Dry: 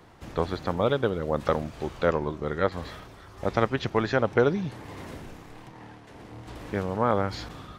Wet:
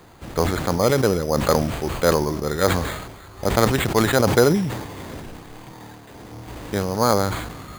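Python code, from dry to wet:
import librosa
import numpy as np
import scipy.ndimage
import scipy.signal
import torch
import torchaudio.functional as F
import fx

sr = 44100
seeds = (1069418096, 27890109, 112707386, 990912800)

y = np.repeat(x[::8], 8)[:len(x)]
y = fx.sustainer(y, sr, db_per_s=51.0)
y = y * 10.0 ** (5.0 / 20.0)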